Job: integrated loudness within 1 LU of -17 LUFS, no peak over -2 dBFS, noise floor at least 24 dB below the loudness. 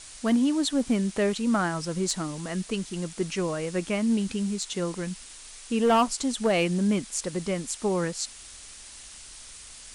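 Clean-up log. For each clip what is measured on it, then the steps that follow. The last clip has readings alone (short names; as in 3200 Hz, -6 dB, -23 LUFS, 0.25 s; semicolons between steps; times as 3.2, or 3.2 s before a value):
clipped 0.3%; flat tops at -16.0 dBFS; noise floor -46 dBFS; noise floor target -51 dBFS; loudness -27.0 LUFS; peak -16.0 dBFS; loudness target -17.0 LUFS
-> clip repair -16 dBFS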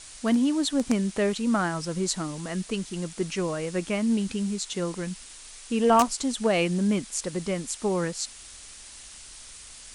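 clipped 0.0%; noise floor -46 dBFS; noise floor target -51 dBFS
-> noise print and reduce 6 dB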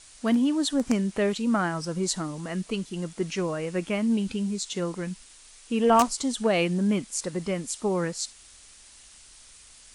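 noise floor -52 dBFS; loudness -27.0 LUFS; peak -7.0 dBFS; loudness target -17.0 LUFS
-> gain +10 dB; limiter -2 dBFS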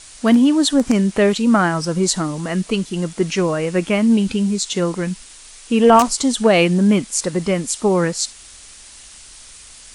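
loudness -17.0 LUFS; peak -2.0 dBFS; noise floor -42 dBFS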